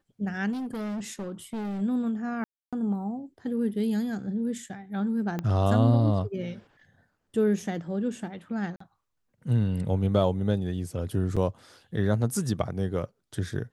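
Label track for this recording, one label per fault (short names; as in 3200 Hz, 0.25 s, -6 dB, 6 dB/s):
0.520000	1.820000	clipped -30 dBFS
2.440000	2.730000	gap 0.286 s
5.390000	5.390000	pop -18 dBFS
8.760000	8.800000	gap 44 ms
11.360000	11.370000	gap 6.2 ms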